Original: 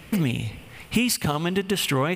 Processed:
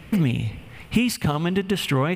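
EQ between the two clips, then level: tone controls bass +4 dB, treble -6 dB; 0.0 dB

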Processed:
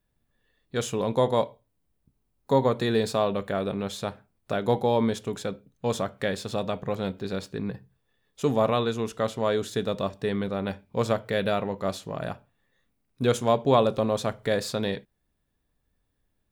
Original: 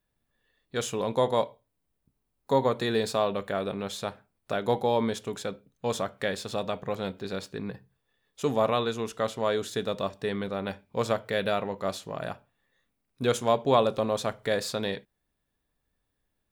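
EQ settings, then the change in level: bass shelf 340 Hz +6 dB; 0.0 dB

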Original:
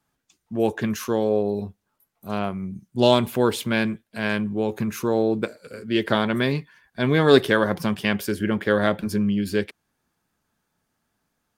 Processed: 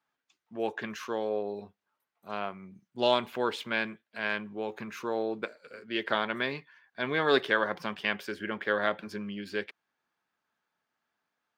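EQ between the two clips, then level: high-pass 1.3 kHz 6 dB/octave; treble shelf 4.9 kHz -9.5 dB; peaking EQ 11 kHz -14 dB 1.3 oct; 0.0 dB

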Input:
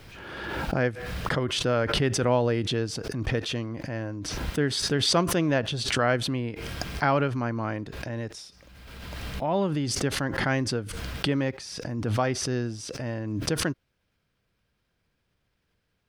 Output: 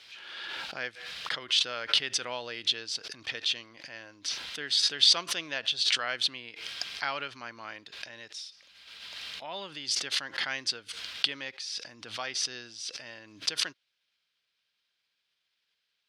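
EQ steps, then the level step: band-pass filter 3.8 kHz, Q 1.7; +6.0 dB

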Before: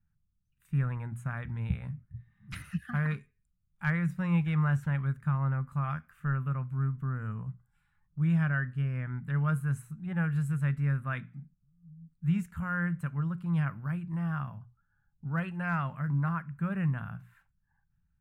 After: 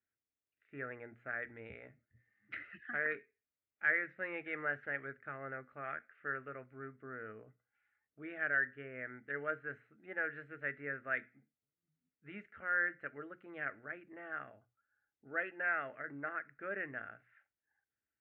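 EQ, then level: dynamic bell 1.7 kHz, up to +7 dB, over -52 dBFS, Q 3; cabinet simulation 270–2700 Hz, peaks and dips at 310 Hz +6 dB, 440 Hz +8 dB, 630 Hz +9 dB, 910 Hz +9 dB, 1.4 kHz +5 dB, 2 kHz +9 dB; static phaser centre 400 Hz, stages 4; -4.0 dB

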